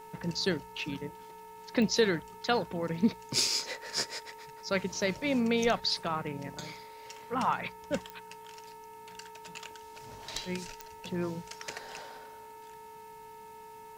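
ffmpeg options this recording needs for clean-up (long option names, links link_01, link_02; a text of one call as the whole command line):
ffmpeg -i in.wav -af "adeclick=threshold=4,bandreject=frequency=434.2:width_type=h:width=4,bandreject=frequency=868.4:width_type=h:width=4,bandreject=frequency=1302.6:width_type=h:width=4,bandreject=frequency=1736.8:width_type=h:width=4,bandreject=frequency=2171:width_type=h:width=4,bandreject=frequency=2605.2:width_type=h:width=4,bandreject=frequency=920:width=30" out.wav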